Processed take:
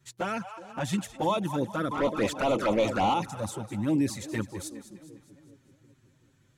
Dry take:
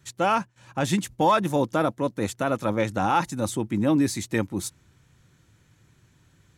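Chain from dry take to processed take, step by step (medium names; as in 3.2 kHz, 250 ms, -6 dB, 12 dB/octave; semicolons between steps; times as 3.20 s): two-band feedback delay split 570 Hz, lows 375 ms, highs 205 ms, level -14 dB; 1.91–3.14 s: overdrive pedal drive 24 dB, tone 2.2 kHz, clips at -10.5 dBFS; touch-sensitive flanger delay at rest 8.2 ms, full sweep at -16 dBFS; trim -3.5 dB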